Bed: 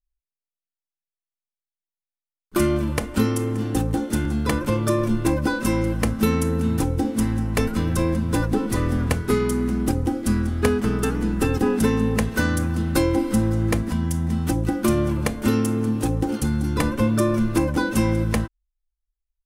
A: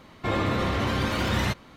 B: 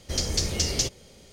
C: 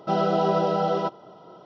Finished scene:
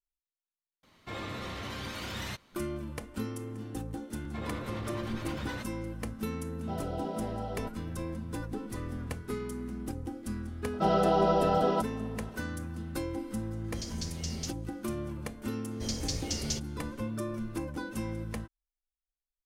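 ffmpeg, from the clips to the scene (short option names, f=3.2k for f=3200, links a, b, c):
-filter_complex "[1:a]asplit=2[a][b];[3:a]asplit=2[c][d];[2:a]asplit=2[e][f];[0:a]volume=-15.5dB[g];[a]highshelf=f=2.4k:g=9[h];[b]acrossover=split=560[i][j];[i]aeval=exprs='val(0)*(1-0.5/2+0.5/2*cos(2*PI*9.6*n/s))':c=same[k];[j]aeval=exprs='val(0)*(1-0.5/2-0.5/2*cos(2*PI*9.6*n/s))':c=same[l];[k][l]amix=inputs=2:normalize=0[m];[c]asuperstop=centerf=1200:order=4:qfactor=5.4[n];[h]atrim=end=1.76,asetpts=PTS-STARTPTS,volume=-14.5dB,afade=t=in:d=0.004:c=hsin,afade=t=out:st=1.756:d=0.004:c=hsin,adelay=830[o];[m]atrim=end=1.76,asetpts=PTS-STARTPTS,volume=-12.5dB,afade=t=in:d=0.004:c=hsin,afade=t=out:st=1.756:d=0.004:c=hsin,adelay=4100[p];[n]atrim=end=1.65,asetpts=PTS-STARTPTS,volume=-15.5dB,afade=t=in:d=0.004:c=hsin,afade=t=out:st=1.646:d=0.004:c=hsin,adelay=6600[q];[d]atrim=end=1.65,asetpts=PTS-STARTPTS,volume=-3dB,afade=t=in:d=0.004:c=hsin,afade=t=out:st=1.646:d=0.004:c=hsin,adelay=10730[r];[e]atrim=end=1.32,asetpts=PTS-STARTPTS,volume=-14dB,afade=t=in:d=0.004:c=hsin,afade=t=out:st=1.316:d=0.004:c=hsin,adelay=601524S[s];[f]atrim=end=1.32,asetpts=PTS-STARTPTS,volume=-9dB,afade=t=in:d=0.004:c=hsin,afade=t=out:st=1.316:d=0.004:c=hsin,adelay=15710[t];[g][o][p][q][r][s][t]amix=inputs=7:normalize=0"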